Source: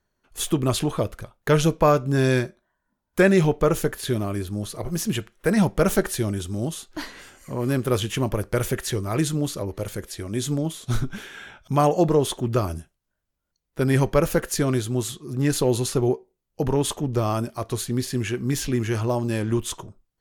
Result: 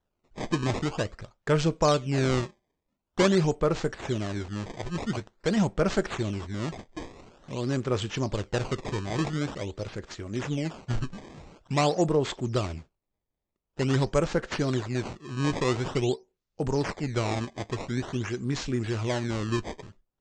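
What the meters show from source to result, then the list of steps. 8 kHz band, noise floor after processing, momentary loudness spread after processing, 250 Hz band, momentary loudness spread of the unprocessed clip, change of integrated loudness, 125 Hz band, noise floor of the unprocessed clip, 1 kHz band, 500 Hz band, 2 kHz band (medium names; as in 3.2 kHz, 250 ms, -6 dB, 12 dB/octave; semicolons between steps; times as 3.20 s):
-10.0 dB, -84 dBFS, 12 LU, -5.0 dB, 13 LU, -5.0 dB, -5.0 dB, -79 dBFS, -4.5 dB, -5.0 dB, -4.5 dB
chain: decimation with a swept rate 18×, swing 160% 0.47 Hz; steep low-pass 7.8 kHz 48 dB/octave; trim -5 dB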